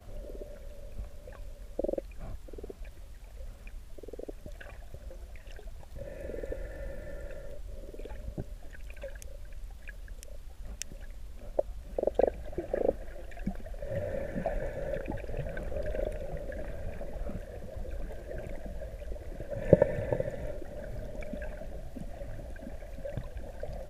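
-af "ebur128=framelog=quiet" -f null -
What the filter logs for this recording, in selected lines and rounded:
Integrated loudness:
  I:         -37.4 LUFS
  Threshold: -48.2 LUFS
Loudness range:
  LRA:        13.5 LU
  Threshold: -57.8 LUFS
  LRA low:   -46.4 LUFS
  LRA high:  -32.9 LUFS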